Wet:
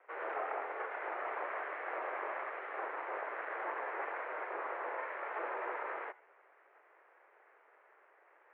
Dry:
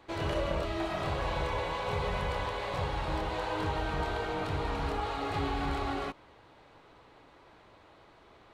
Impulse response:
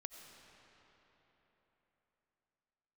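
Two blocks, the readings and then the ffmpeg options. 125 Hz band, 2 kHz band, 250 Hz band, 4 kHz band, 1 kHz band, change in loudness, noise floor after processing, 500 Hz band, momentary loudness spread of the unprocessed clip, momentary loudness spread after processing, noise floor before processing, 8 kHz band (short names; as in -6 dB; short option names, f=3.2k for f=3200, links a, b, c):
under -40 dB, -2.0 dB, -18.5 dB, under -20 dB, -5.0 dB, -6.5 dB, -66 dBFS, -7.0 dB, 2 LU, 2 LU, -58 dBFS, under -25 dB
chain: -filter_complex "[0:a]aeval=exprs='abs(val(0))':c=same[a];[1:a]atrim=start_sample=2205,afade=t=out:st=0.13:d=0.01,atrim=end_sample=6174[b];[a][b]afir=irnorm=-1:irlink=0,highpass=f=240:t=q:w=0.5412,highpass=f=240:t=q:w=1.307,lowpass=f=2k:t=q:w=0.5176,lowpass=f=2k:t=q:w=0.7071,lowpass=f=2k:t=q:w=1.932,afreqshift=150,volume=4dB"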